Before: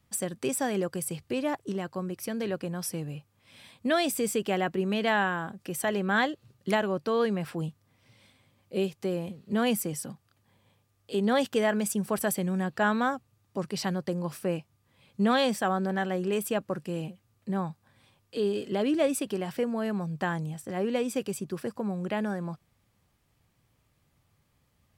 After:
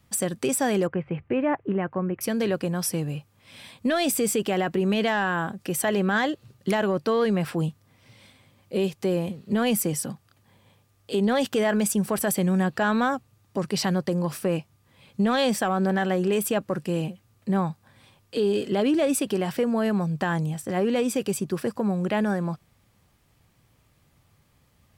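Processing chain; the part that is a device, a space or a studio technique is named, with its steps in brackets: soft clipper into limiter (soft clip -15.5 dBFS, distortion -25 dB; limiter -23 dBFS, peak gain reduction 5.5 dB); 0.87–2.21 steep low-pass 2500 Hz 36 dB/oct; gain +7 dB

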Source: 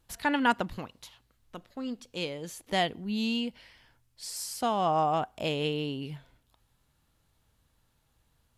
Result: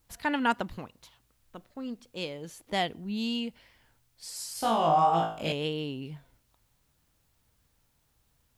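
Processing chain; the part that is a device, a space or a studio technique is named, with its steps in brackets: 4.53–5.52 flutter echo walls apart 3.1 m, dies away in 0.48 s; plain cassette with noise reduction switched in (mismatched tape noise reduction decoder only; wow and flutter; white noise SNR 42 dB); gain -1.5 dB

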